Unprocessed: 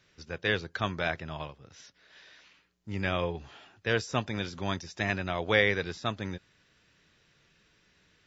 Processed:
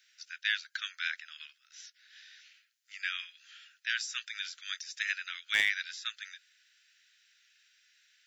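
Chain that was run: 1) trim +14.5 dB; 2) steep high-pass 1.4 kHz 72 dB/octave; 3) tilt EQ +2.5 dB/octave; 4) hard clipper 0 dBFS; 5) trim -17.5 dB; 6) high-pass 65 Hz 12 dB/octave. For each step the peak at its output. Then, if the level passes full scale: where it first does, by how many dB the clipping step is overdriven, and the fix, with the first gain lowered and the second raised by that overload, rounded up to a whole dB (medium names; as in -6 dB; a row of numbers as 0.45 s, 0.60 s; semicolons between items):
+5.0 dBFS, +3.5 dBFS, +7.0 dBFS, 0.0 dBFS, -17.5 dBFS, -17.0 dBFS; step 1, 7.0 dB; step 1 +7.5 dB, step 5 -10.5 dB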